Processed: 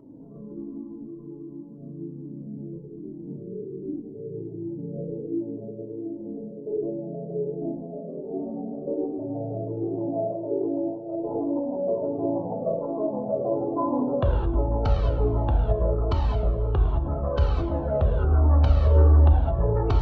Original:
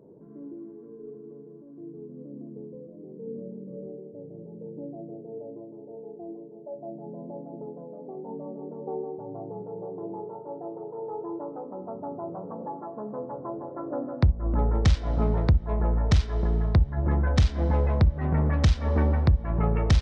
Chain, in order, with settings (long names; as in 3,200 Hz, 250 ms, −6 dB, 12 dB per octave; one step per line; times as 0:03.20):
downward compressor, threshold −26 dBFS, peak gain reduction 11 dB
low-shelf EQ 120 Hz +11.5 dB
convolution reverb, pre-delay 3 ms, DRR −0.5 dB
formants moved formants −5 semitones
flat-topped bell 600 Hz +11.5 dB 2.5 octaves
feedback echo with a low-pass in the loop 106 ms, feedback 51%, low-pass 2,100 Hz, level −11 dB
flanger whose copies keep moving one way falling 1.3 Hz